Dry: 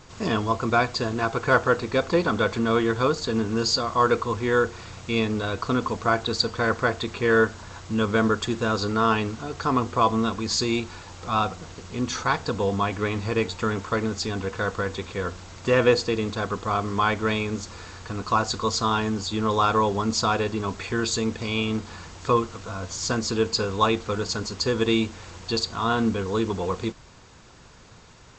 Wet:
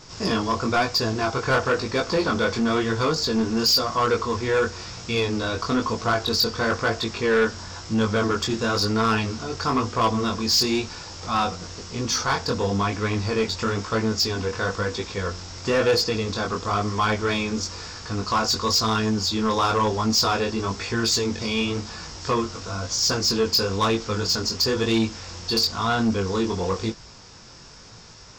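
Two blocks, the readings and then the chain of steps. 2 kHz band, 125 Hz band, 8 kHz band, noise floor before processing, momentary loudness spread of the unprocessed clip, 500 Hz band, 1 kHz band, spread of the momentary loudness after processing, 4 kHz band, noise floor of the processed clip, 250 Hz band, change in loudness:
+0.5 dB, +1.0 dB, +5.0 dB, -48 dBFS, 9 LU, 0.0 dB, 0.0 dB, 8 LU, +6.0 dB, -45 dBFS, +1.0 dB, +1.5 dB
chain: peaking EQ 5.3 kHz +14 dB 0.38 oct; chorus 1 Hz, delay 18 ms, depth 4.9 ms; saturation -19.5 dBFS, distortion -13 dB; trim +5 dB

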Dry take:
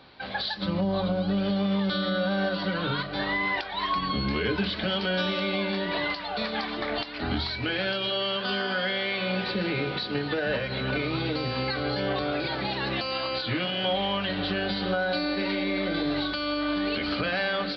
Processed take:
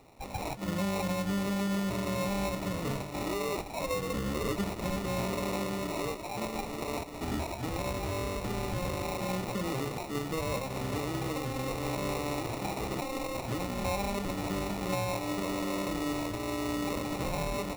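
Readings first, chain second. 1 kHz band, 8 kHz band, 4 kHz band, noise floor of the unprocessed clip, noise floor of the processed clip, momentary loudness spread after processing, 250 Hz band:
-4.0 dB, no reading, -12.5 dB, -35 dBFS, -40 dBFS, 4 LU, -4.5 dB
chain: sample-rate reducer 1.6 kHz, jitter 0%; trim -5 dB

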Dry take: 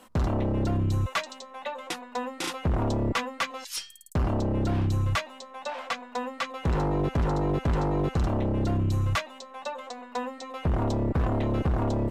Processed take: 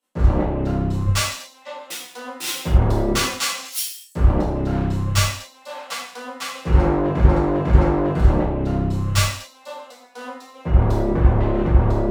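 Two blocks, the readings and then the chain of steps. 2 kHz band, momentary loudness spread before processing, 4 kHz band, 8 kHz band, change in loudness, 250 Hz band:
+6.0 dB, 10 LU, +9.5 dB, +13.5 dB, +8.5 dB, +6.5 dB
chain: self-modulated delay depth 0.078 ms; gated-style reverb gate 300 ms falling, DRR -6 dB; three bands expanded up and down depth 100%

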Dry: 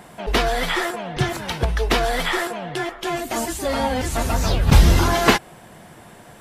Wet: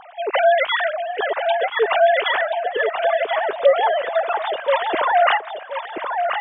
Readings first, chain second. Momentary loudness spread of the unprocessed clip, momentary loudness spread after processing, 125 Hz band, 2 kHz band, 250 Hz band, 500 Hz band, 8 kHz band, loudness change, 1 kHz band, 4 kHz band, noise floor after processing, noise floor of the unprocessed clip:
10 LU, 7 LU, under -40 dB, +3.5 dB, under -15 dB, +7.0 dB, under -40 dB, +1.5 dB, +5.5 dB, -2.0 dB, -35 dBFS, -45 dBFS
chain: formants replaced by sine waves; dynamic bell 2.6 kHz, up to -4 dB, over -34 dBFS, Q 1.3; filtered feedback delay 1030 ms, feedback 27%, low-pass 3 kHz, level -5.5 dB

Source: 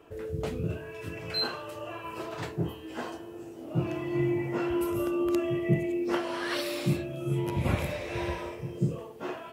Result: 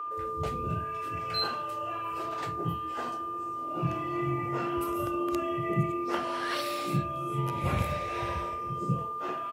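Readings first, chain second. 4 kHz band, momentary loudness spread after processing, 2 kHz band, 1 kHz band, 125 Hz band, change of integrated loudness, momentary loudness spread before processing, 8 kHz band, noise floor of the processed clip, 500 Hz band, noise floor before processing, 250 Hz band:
-1.0 dB, 5 LU, -1.0 dB, +9.0 dB, -1.5 dB, 0.0 dB, 11 LU, -1.0 dB, -36 dBFS, -3.0 dB, -44 dBFS, -4.0 dB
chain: whistle 1.2 kHz -32 dBFS; bands offset in time highs, lows 70 ms, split 260 Hz; trim -1 dB

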